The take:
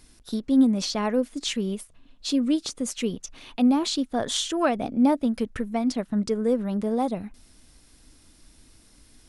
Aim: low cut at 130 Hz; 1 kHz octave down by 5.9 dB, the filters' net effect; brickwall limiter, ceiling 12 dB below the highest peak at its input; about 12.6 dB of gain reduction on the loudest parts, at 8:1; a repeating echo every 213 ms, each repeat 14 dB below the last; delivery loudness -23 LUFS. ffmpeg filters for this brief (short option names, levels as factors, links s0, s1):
-af "highpass=130,equalizer=f=1000:t=o:g=-8.5,acompressor=threshold=0.0355:ratio=8,alimiter=level_in=2.11:limit=0.0631:level=0:latency=1,volume=0.473,aecho=1:1:213|426:0.2|0.0399,volume=5.96"